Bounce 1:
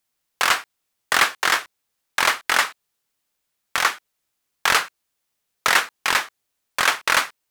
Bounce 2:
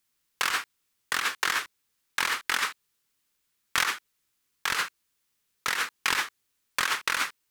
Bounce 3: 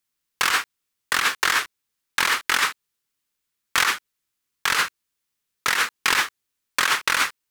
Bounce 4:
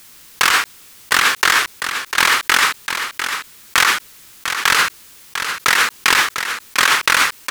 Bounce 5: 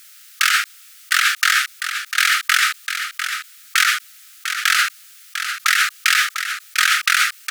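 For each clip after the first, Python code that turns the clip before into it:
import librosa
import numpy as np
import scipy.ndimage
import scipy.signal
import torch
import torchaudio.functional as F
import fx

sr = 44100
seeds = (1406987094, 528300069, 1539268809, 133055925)

y1 = fx.peak_eq(x, sr, hz=680.0, db=-9.5, octaves=0.68)
y1 = fx.over_compress(y1, sr, threshold_db=-24.0, ratio=-1.0)
y1 = y1 * 10.0 ** (-3.0 / 20.0)
y2 = fx.leveller(y1, sr, passes=2)
y3 = y2 + 10.0 ** (-16.5 / 20.0) * np.pad(y2, (int(699 * sr / 1000.0), 0))[:len(y2)]
y3 = fx.env_flatten(y3, sr, amount_pct=50)
y3 = y3 * 10.0 ** (5.0 / 20.0)
y4 = fx.brickwall_highpass(y3, sr, low_hz=1200.0)
y4 = y4 * 10.0 ** (-1.5 / 20.0)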